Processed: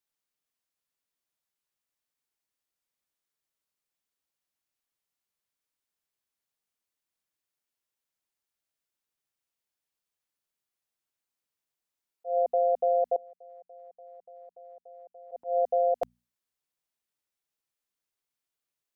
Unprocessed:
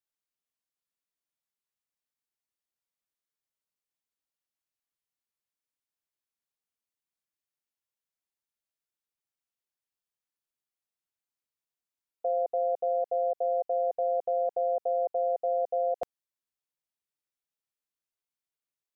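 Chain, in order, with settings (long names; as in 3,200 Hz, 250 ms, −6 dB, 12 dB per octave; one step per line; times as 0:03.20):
0:13.16–0:15.32: noise gate −23 dBFS, range −25 dB
mains-hum notches 60/120/180/240 Hz
volume swells 144 ms
level +3.5 dB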